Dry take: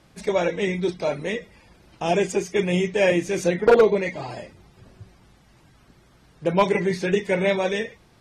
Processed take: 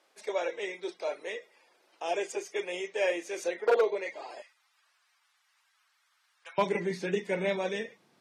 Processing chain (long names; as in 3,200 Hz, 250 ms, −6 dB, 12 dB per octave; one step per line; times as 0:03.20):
high-pass filter 400 Hz 24 dB per octave, from 0:04.42 1,100 Hz, from 0:06.58 170 Hz
level −8.5 dB